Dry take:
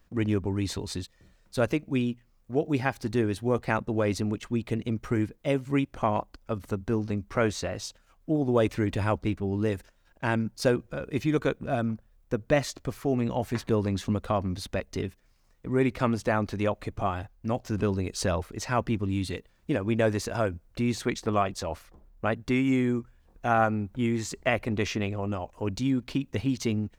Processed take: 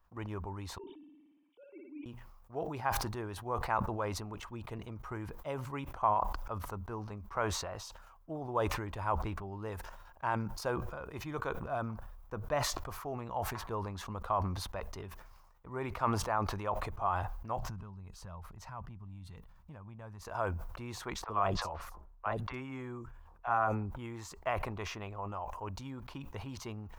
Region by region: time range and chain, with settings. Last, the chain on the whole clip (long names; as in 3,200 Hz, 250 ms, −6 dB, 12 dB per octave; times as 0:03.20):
0:00.78–0:02.06: three sine waves on the formant tracks + formant resonators in series i + flutter between parallel walls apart 9.8 metres, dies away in 0.68 s
0:17.58–0:20.25: low shelf with overshoot 260 Hz +9.5 dB, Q 1.5 + downward compressor 2.5 to 1, threshold −38 dBFS
0:21.24–0:23.91: high-shelf EQ 9,800 Hz −9 dB + three-band delay without the direct sound mids, lows, highs 30/60 ms, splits 640/4,700 Hz
whole clip: graphic EQ with 10 bands 125 Hz −4 dB, 250 Hz −11 dB, 500 Hz −4 dB, 1,000 Hz +12 dB, 2,000 Hz −6 dB, 4,000 Hz −5 dB, 8,000 Hz −7 dB; level that may fall only so fast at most 41 dB per second; level −8.5 dB